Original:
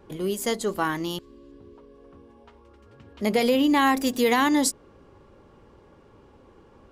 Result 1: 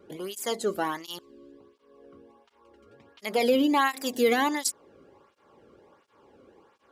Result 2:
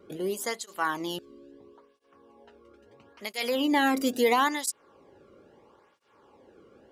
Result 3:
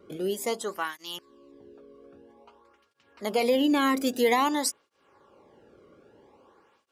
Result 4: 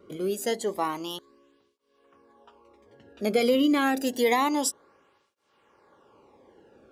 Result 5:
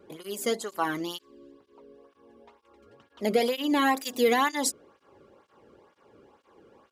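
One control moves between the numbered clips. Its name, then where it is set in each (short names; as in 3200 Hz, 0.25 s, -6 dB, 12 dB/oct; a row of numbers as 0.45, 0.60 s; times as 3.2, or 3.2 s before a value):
tape flanging out of phase, nulls at: 1.4, 0.75, 0.51, 0.28, 2.1 Hz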